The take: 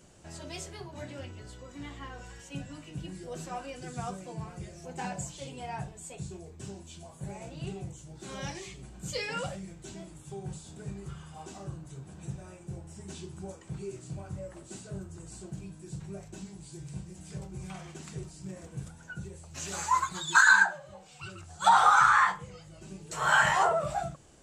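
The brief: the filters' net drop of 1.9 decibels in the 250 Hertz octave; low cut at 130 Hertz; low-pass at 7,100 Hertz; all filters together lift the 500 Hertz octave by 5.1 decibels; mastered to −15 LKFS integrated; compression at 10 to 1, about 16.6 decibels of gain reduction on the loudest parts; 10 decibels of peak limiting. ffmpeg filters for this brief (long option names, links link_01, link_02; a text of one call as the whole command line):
ffmpeg -i in.wav -af "highpass=130,lowpass=7100,equalizer=frequency=250:width_type=o:gain=-4.5,equalizer=frequency=500:width_type=o:gain=8,acompressor=threshold=-32dB:ratio=10,volume=27.5dB,alimiter=limit=-3.5dB:level=0:latency=1" out.wav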